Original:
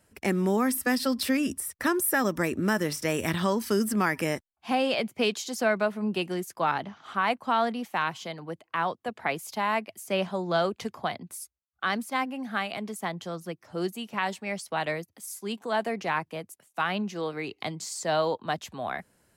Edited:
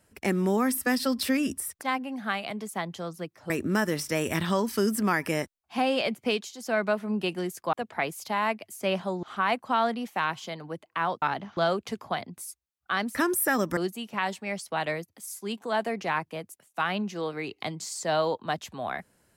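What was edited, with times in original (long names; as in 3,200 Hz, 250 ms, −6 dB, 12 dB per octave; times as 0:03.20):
0:01.81–0:02.43: swap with 0:12.08–0:13.77
0:05.19–0:05.77: duck −8.5 dB, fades 0.26 s
0:06.66–0:07.01: swap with 0:09.00–0:10.50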